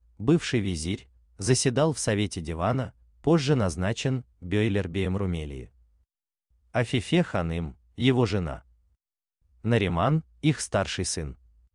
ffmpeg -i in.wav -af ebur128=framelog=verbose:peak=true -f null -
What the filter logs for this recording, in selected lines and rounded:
Integrated loudness:
  I:         -26.7 LUFS
  Threshold: -37.3 LUFS
Loudness range:
  LRA:         3.7 LU
  Threshold: -47.8 LUFS
  LRA low:   -29.9 LUFS
  LRA high:  -26.2 LUFS
True peak:
  Peak:       -9.5 dBFS